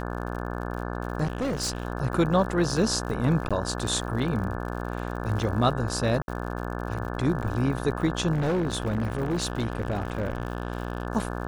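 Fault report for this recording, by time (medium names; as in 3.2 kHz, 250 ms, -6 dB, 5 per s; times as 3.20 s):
buzz 60 Hz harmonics 29 -32 dBFS
crackle 77 per s -35 dBFS
1.23–1.85 s: clipped -24 dBFS
3.49–3.51 s: dropout 16 ms
6.22–6.28 s: dropout 61 ms
8.32–11.07 s: clipped -22 dBFS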